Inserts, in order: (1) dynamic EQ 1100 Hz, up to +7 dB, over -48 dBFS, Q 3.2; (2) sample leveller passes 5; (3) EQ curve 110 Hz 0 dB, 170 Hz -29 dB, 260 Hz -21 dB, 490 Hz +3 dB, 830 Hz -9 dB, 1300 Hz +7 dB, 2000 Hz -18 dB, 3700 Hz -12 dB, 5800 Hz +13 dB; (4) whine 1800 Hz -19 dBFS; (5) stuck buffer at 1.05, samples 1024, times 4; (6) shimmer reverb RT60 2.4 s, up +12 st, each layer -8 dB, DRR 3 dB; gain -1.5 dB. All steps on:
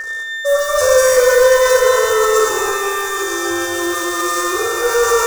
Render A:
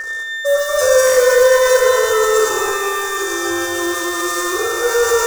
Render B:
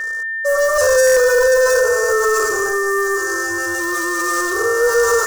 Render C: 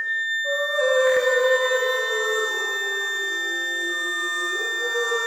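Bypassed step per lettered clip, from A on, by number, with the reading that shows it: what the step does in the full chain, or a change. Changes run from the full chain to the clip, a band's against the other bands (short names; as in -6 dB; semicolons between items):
1, 1 kHz band -1.5 dB; 6, 2 kHz band +4.5 dB; 2, 2 kHz band +11.0 dB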